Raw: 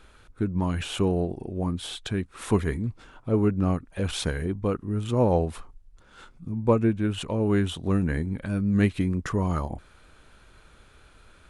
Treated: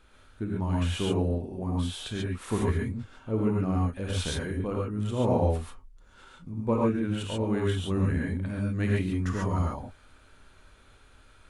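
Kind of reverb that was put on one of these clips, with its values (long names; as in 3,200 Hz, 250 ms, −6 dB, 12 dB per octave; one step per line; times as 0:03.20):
reverb whose tail is shaped and stops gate 160 ms rising, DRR −3 dB
level −7 dB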